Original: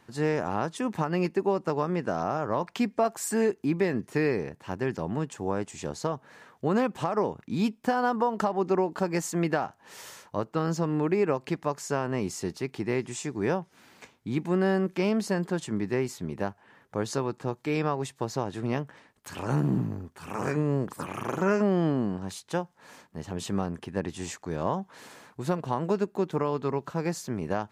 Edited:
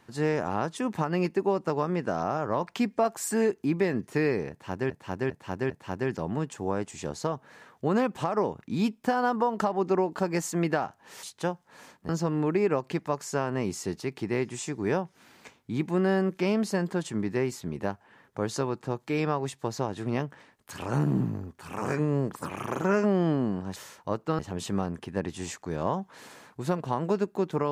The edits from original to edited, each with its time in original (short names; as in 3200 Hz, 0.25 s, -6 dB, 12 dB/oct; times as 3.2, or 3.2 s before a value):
4.5–4.9 loop, 4 plays
10.03–10.66 swap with 22.33–23.19